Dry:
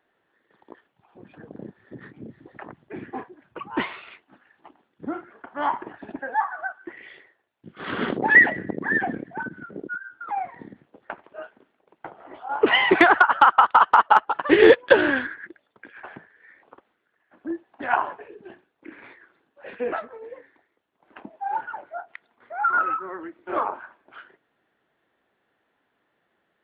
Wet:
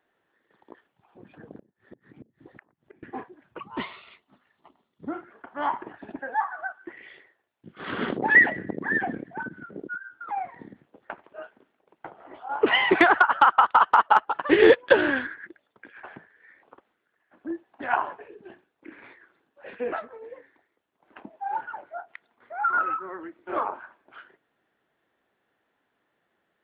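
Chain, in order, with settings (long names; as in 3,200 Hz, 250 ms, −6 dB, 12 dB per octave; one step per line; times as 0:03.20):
0:01.59–0:03.03: gate with flip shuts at −32 dBFS, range −25 dB
0:03.61–0:05.08: thirty-one-band graphic EQ 315 Hz −8 dB, 500 Hz −5 dB, 800 Hz −6 dB, 1,600 Hz −12 dB, 2,500 Hz −5 dB, 4,000 Hz +4 dB
level −2.5 dB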